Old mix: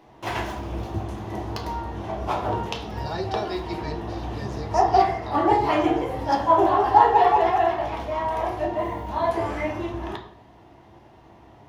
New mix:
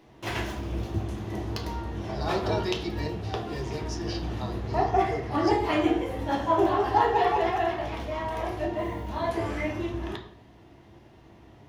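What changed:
speech: entry −0.85 s
background: add parametric band 860 Hz −8 dB 1.2 octaves

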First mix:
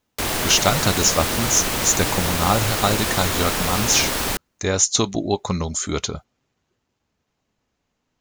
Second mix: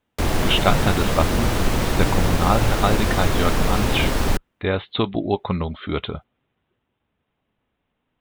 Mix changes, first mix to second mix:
speech: add Butterworth low-pass 3,700 Hz 96 dB per octave
background: add spectral tilt −2.5 dB per octave

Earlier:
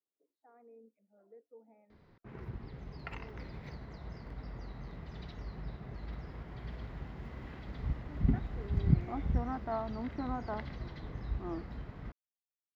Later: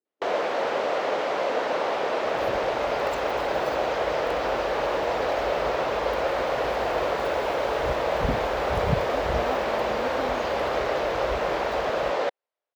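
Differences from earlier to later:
speech +10.5 dB
first sound: unmuted
master: remove high-frequency loss of the air 300 metres

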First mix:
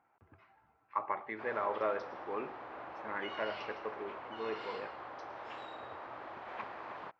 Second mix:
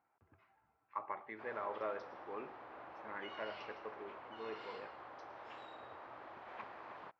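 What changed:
speech −7.0 dB
background −6.0 dB

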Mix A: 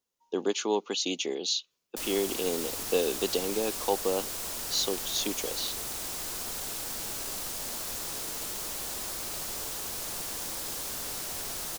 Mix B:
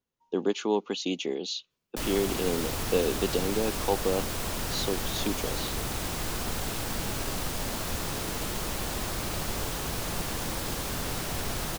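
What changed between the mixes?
background +7.0 dB
master: add bass and treble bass +9 dB, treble −9 dB

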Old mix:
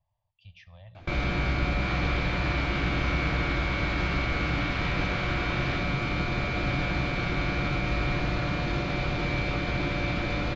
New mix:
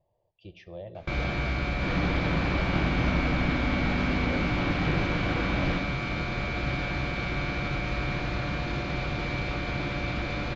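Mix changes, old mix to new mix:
speech: remove Chebyshev band-stop filter 110–1,100 Hz, order 2
first sound: send −8.5 dB
second sound: remove high-pass filter 1,100 Hz

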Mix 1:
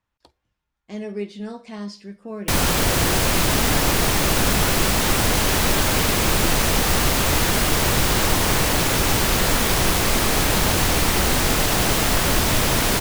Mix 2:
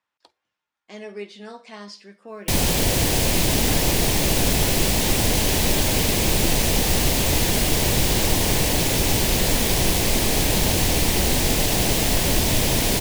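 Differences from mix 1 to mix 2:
speech: add meter weighting curve A
background: add parametric band 1,300 Hz −12.5 dB 0.78 octaves

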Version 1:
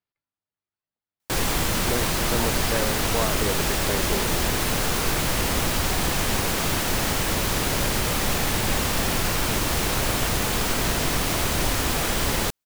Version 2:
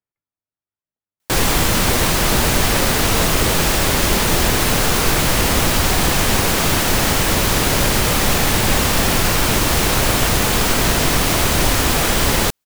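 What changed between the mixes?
speech: add high-frequency loss of the air 430 metres
background +7.5 dB

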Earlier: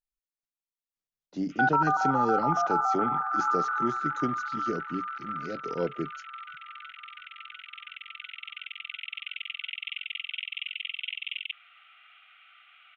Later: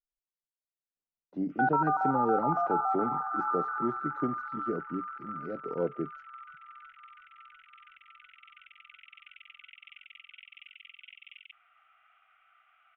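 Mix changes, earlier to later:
speech: add low-shelf EQ 140 Hz −6 dB
master: add low-pass filter 1,100 Hz 12 dB per octave

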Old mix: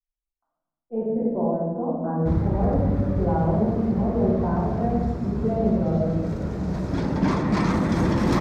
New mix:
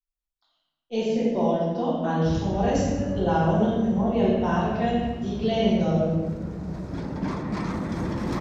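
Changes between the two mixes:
speech: remove Bessel low-pass filter 860 Hz, order 6
background −7.0 dB

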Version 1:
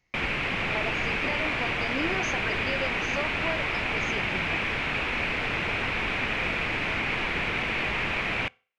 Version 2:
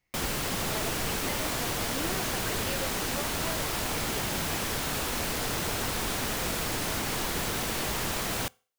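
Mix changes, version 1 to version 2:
speech −6.0 dB
background: remove low-pass with resonance 2,400 Hz, resonance Q 4.5

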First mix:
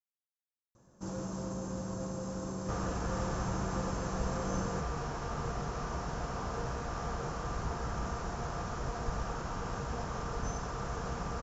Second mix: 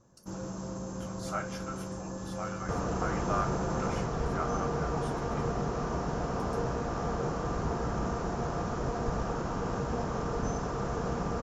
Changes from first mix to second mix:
speech: unmuted
first sound: entry −0.75 s
second sound: add parametric band 310 Hz +9 dB 2.7 octaves

